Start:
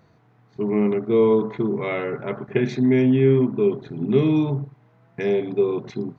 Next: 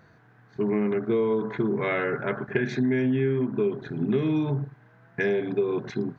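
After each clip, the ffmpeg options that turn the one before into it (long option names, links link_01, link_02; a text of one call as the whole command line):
ffmpeg -i in.wav -af "equalizer=frequency=1600:width=4.1:gain=13,acompressor=threshold=-21dB:ratio=6" out.wav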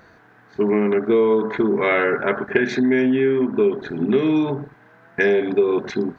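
ffmpeg -i in.wav -af "equalizer=frequency=130:width=1.7:gain=-13.5,volume=8.5dB" out.wav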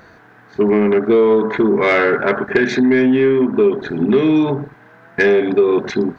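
ffmpeg -i in.wav -af "asoftclip=type=tanh:threshold=-9.5dB,volume=5.5dB" out.wav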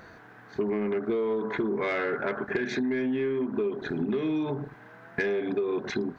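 ffmpeg -i in.wav -af "acompressor=threshold=-23dB:ratio=4,volume=-4.5dB" out.wav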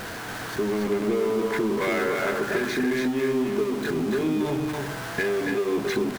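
ffmpeg -i in.wav -af "aeval=exprs='val(0)+0.5*0.0299*sgn(val(0))':channel_layout=same,aecho=1:1:282:0.631" out.wav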